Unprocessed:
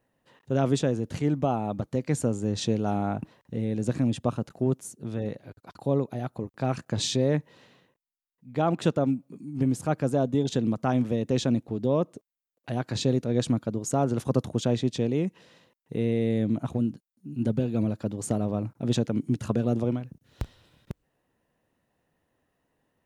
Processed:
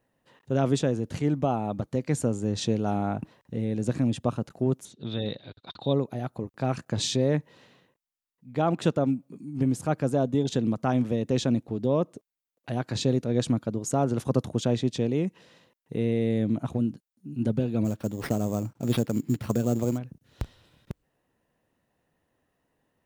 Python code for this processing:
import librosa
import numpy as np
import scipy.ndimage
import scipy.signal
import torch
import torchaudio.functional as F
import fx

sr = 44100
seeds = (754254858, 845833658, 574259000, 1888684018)

y = fx.lowpass_res(x, sr, hz=3700.0, q=14.0, at=(4.85, 5.93))
y = fx.sample_hold(y, sr, seeds[0], rate_hz=7100.0, jitter_pct=0, at=(17.84, 19.97), fade=0.02)